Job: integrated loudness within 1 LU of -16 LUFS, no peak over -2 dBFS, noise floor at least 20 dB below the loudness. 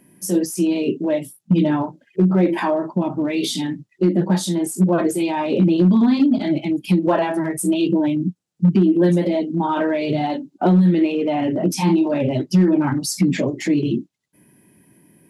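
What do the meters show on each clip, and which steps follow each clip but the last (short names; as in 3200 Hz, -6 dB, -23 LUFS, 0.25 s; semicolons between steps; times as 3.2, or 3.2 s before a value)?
clipped 0.9%; flat tops at -8.5 dBFS; loudness -19.0 LUFS; peak -8.5 dBFS; loudness target -16.0 LUFS
-> clip repair -8.5 dBFS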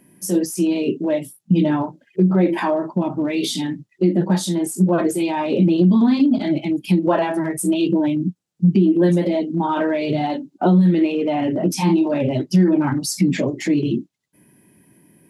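clipped 0.0%; loudness -19.0 LUFS; peak -6.5 dBFS; loudness target -16.0 LUFS
-> gain +3 dB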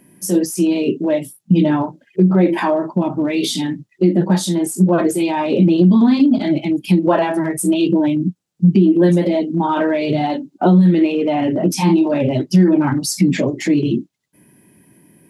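loudness -16.0 LUFS; peak -3.5 dBFS; noise floor -60 dBFS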